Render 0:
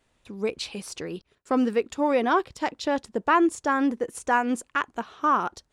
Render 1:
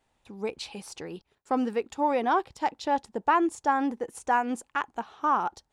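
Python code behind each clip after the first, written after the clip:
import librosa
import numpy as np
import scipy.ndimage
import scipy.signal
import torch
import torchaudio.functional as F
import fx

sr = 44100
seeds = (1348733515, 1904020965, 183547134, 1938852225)

y = fx.peak_eq(x, sr, hz=830.0, db=11.0, octaves=0.3)
y = y * librosa.db_to_amplitude(-5.0)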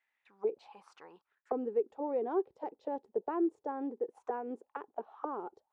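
y = fx.auto_wah(x, sr, base_hz=410.0, top_hz=2000.0, q=4.8, full_db=-28.0, direction='down')
y = y * librosa.db_to_amplitude(2.5)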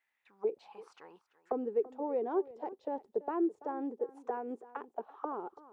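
y = x + 10.0 ** (-18.0 / 20.0) * np.pad(x, (int(335 * sr / 1000.0), 0))[:len(x)]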